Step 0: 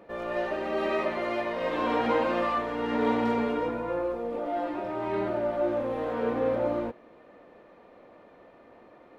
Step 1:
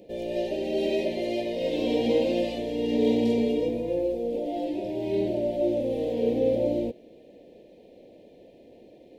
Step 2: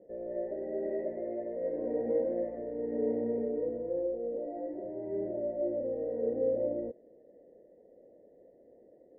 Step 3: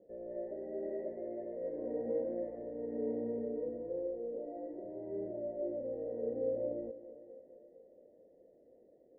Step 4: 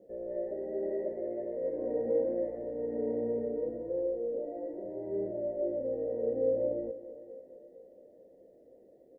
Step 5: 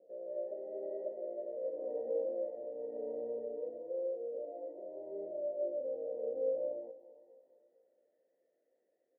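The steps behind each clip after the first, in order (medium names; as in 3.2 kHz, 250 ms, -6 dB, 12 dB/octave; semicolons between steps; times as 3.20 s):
Chebyshev band-stop 500–3200 Hz, order 2; treble shelf 4.8 kHz +5 dB; trim +4.5 dB
rippled Chebyshev low-pass 2 kHz, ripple 9 dB; trim -5 dB
distance through air 400 m; two-band feedback delay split 390 Hz, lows 246 ms, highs 444 ms, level -15 dB; trim -4.5 dB
doubling 15 ms -11 dB; trim +4.5 dB
band-pass sweep 610 Hz -> 1.7 kHz, 6.47–8.19 s; trim -2.5 dB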